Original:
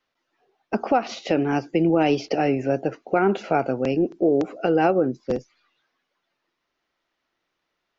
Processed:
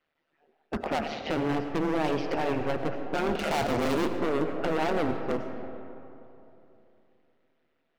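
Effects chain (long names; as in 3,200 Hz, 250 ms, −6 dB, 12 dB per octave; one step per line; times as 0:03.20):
low-pass filter 2,900 Hz 12 dB per octave
parametric band 1,100 Hz −5.5 dB 0.36 octaves
notch filter 870 Hz, Q 12
0:03.39–0:04.10: leveller curve on the samples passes 3
hard clipping −26 dBFS, distortion −4 dB
amplitude modulation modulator 150 Hz, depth 70%
comb and all-pass reverb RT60 3.1 s, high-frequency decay 0.45×, pre-delay 55 ms, DRR 7 dB
level +3.5 dB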